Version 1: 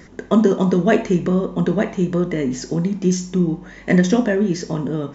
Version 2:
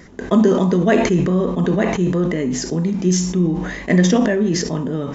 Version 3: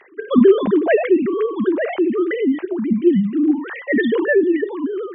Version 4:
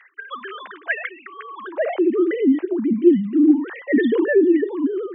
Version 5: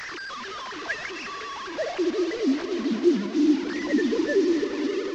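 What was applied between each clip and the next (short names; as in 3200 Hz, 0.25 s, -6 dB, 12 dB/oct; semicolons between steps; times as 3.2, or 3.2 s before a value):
sustainer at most 45 dB/s
sine-wave speech
high-pass sweep 1500 Hz -> 280 Hz, 1.44–2.19; gain -5 dB
delta modulation 32 kbps, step -22.5 dBFS; swelling echo 88 ms, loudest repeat 5, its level -17.5 dB; gain -7 dB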